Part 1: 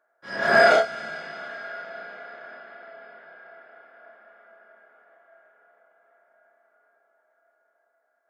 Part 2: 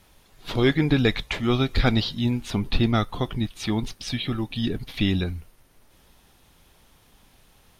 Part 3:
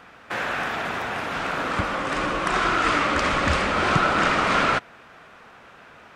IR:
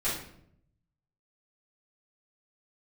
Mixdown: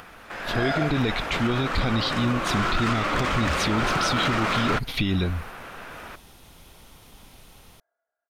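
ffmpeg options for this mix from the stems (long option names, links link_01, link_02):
-filter_complex "[0:a]adelay=50,volume=-14.5dB[link_01];[1:a]bandreject=frequency=1700:width=12,acompressor=threshold=-31dB:ratio=2,volume=1dB[link_02];[2:a]acompressor=mode=upward:threshold=-27dB:ratio=2.5,asoftclip=type=hard:threshold=-17dB,volume=-9dB[link_03];[link_01][link_02][link_03]amix=inputs=3:normalize=0,dynaudnorm=framelen=150:gausssize=9:maxgain=6.5dB,alimiter=limit=-14.5dB:level=0:latency=1:release=13"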